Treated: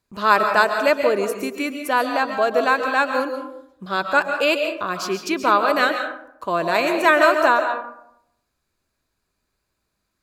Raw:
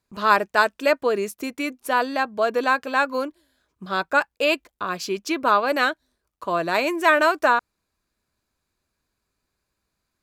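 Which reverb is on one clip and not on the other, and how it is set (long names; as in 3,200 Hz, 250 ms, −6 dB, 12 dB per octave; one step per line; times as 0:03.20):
comb and all-pass reverb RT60 0.76 s, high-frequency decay 0.45×, pre-delay 95 ms, DRR 5.5 dB
level +1.5 dB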